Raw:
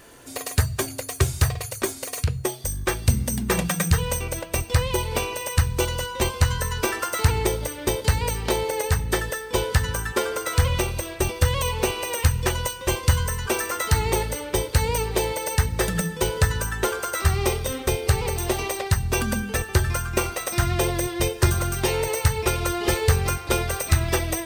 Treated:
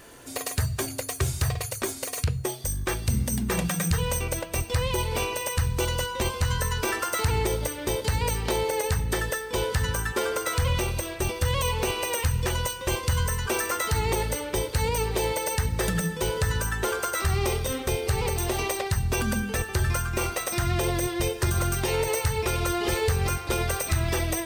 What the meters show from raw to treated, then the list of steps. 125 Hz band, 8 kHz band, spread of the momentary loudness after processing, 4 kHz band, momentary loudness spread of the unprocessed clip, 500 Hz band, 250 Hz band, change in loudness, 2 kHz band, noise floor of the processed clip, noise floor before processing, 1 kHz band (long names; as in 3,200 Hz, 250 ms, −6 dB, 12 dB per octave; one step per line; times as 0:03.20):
−3.5 dB, −2.5 dB, 3 LU, −2.0 dB, 4 LU, −2.5 dB, −2.5 dB, −2.5 dB, −2.5 dB, −37 dBFS, −37 dBFS, −2.0 dB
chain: brickwall limiter −15.5 dBFS, peak gain reduction 7.5 dB